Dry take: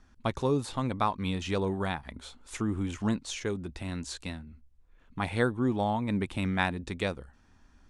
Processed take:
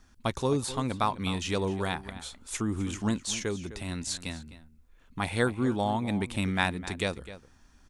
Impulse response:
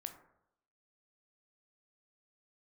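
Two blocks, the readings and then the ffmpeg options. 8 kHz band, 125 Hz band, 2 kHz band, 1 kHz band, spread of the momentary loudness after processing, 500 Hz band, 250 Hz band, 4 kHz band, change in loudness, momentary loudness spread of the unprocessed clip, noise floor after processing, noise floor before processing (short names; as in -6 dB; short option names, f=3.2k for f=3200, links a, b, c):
+7.5 dB, 0.0 dB, +1.5 dB, +0.5 dB, 13 LU, +0.5 dB, 0.0 dB, +4.0 dB, +1.0 dB, 11 LU, -59 dBFS, -61 dBFS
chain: -filter_complex "[0:a]highshelf=f=4.5k:g=10.5,asplit=2[a][b];[b]adelay=256.6,volume=-14dB,highshelf=f=4k:g=-5.77[c];[a][c]amix=inputs=2:normalize=0"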